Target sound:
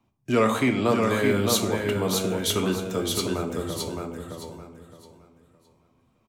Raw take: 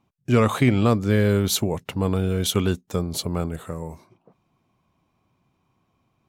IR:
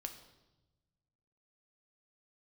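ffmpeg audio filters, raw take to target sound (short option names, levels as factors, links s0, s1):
-filter_complex "[1:a]atrim=start_sample=2205,asetrate=74970,aresample=44100[s0];[0:a][s0]afir=irnorm=-1:irlink=0,acrossover=split=230|520|2000[s1][s2][s3][s4];[s1]acompressor=threshold=0.00794:ratio=6[s5];[s5][s2][s3][s4]amix=inputs=4:normalize=0,aecho=1:1:615|1230|1845|2460:0.631|0.17|0.046|0.0124,volume=2.24"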